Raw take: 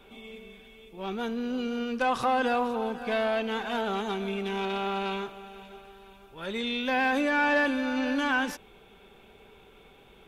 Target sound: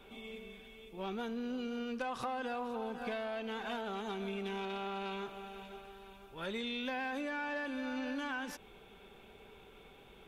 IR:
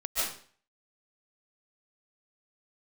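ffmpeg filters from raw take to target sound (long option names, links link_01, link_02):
-af "acompressor=threshold=-33dB:ratio=10,volume=-2.5dB"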